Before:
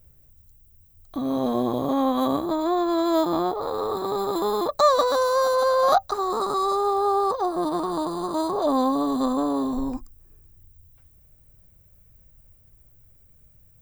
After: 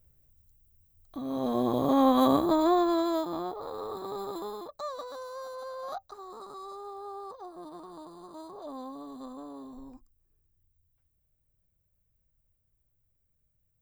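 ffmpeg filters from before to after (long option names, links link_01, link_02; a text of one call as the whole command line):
ffmpeg -i in.wav -af "volume=0.5dB,afade=type=in:start_time=1.27:duration=0.8:silence=0.334965,afade=type=out:start_time=2.63:duration=0.6:silence=0.281838,afade=type=out:start_time=4.26:duration=0.46:silence=0.354813" out.wav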